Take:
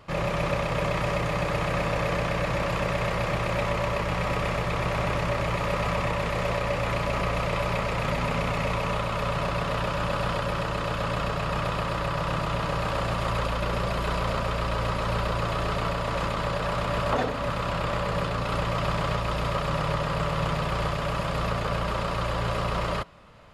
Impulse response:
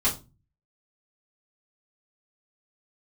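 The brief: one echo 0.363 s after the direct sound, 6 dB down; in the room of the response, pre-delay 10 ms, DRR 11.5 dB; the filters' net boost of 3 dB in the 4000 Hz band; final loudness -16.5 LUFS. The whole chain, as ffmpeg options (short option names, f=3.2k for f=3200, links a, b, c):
-filter_complex "[0:a]equalizer=f=4k:t=o:g=4,aecho=1:1:363:0.501,asplit=2[a][b];[1:a]atrim=start_sample=2205,adelay=10[c];[b][c]afir=irnorm=-1:irlink=0,volume=-22.5dB[d];[a][d]amix=inputs=2:normalize=0,volume=9dB"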